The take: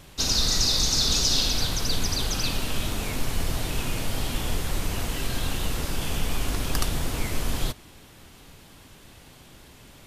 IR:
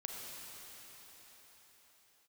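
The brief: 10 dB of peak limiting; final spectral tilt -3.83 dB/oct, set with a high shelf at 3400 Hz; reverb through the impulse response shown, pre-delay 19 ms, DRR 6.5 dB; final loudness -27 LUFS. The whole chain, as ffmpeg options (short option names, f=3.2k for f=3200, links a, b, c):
-filter_complex "[0:a]highshelf=f=3.4k:g=-8,alimiter=limit=-21.5dB:level=0:latency=1,asplit=2[a][b];[1:a]atrim=start_sample=2205,adelay=19[c];[b][c]afir=irnorm=-1:irlink=0,volume=-6dB[d];[a][d]amix=inputs=2:normalize=0,volume=5.5dB"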